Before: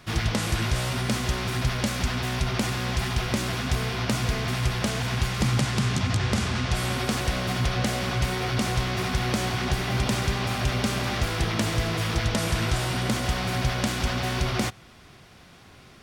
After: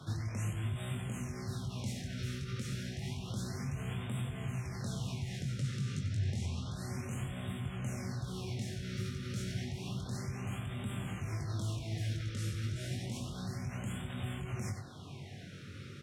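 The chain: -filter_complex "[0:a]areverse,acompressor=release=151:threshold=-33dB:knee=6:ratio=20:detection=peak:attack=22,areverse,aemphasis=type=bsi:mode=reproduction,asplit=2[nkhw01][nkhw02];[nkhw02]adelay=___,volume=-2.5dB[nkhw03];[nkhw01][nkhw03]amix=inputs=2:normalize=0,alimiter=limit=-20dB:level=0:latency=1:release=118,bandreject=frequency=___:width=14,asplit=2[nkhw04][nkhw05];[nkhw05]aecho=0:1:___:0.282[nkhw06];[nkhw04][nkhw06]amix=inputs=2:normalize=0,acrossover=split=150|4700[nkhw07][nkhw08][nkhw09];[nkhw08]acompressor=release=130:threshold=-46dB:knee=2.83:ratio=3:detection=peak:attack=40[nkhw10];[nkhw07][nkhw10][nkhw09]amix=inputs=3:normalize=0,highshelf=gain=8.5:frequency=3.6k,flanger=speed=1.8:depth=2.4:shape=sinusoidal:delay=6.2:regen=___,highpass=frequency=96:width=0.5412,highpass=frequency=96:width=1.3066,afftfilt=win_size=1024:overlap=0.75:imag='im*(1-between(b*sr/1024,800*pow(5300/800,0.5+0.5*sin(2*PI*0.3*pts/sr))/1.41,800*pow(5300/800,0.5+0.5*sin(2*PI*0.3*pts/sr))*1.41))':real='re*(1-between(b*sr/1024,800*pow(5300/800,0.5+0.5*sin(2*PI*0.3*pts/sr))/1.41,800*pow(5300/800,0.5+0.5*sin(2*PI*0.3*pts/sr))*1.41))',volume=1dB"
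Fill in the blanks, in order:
21, 4.7k, 94, -71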